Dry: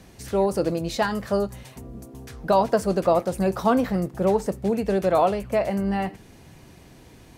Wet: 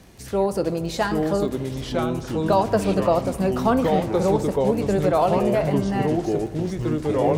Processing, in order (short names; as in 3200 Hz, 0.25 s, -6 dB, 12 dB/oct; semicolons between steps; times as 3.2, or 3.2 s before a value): spring tank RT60 2.1 s, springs 54 ms, chirp 30 ms, DRR 14 dB; echoes that change speed 0.697 s, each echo -4 st, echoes 3; crackle 26/s -36 dBFS